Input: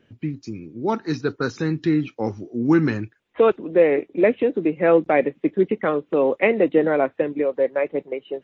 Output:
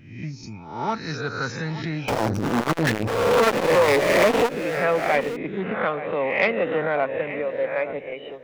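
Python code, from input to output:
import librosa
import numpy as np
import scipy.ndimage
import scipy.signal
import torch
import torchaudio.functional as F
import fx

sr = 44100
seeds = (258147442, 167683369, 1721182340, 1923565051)

y = fx.spec_swells(x, sr, rise_s=0.64)
y = fx.peak_eq(y, sr, hz=340.0, db=-14.0, octaves=0.96)
y = fx.power_curve(y, sr, exponent=0.35, at=(2.08, 4.49))
y = y + 10.0 ** (-14.5 / 20.0) * np.pad(y, (int(876 * sr / 1000.0), 0))[:len(y)]
y = fx.transformer_sat(y, sr, knee_hz=1100.0)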